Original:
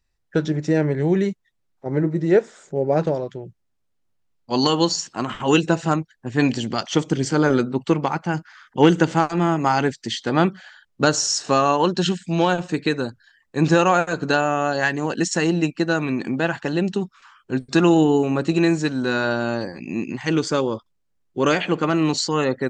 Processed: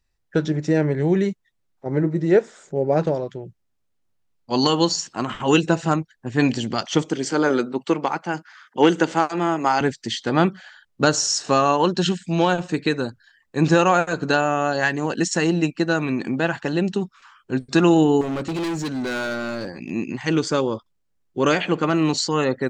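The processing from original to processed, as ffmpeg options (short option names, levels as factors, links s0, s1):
-filter_complex "[0:a]asettb=1/sr,asplit=3[s0][s1][s2];[s0]atrim=end=7.064[s3];[s1]atrim=start=7.06:end=9.81,asetpts=PTS-STARTPTS,afade=t=in:d=0.004:c=qsin,afade=t=out:st=2.746:d=0.004:c=qsin,highpass=260[s4];[s2]atrim=start=9.806[s5];[s3][s4]acrossfade=d=0.004:c1=hsin:c2=qsin[s6];[s6][s5]acrossfade=d=0.004:c1=qsin:c2=hsin,asettb=1/sr,asplit=3[s7][s8][s9];[s7]atrim=end=18.214[s10];[s8]atrim=start=18.21:end=19.91,asetpts=PTS-STARTPTS,afade=t=in:d=0.004:c=qsin,afade=t=out:st=1.696:d=0.004:c=qsin,asoftclip=type=hard:threshold=0.0708[s11];[s9]atrim=start=19.906[s12];[s10][s11]acrossfade=d=0.004:c1=hsin:c2=qsin[s13];[s13][s12]acrossfade=d=0.004:c1=qsin:c2=hsin"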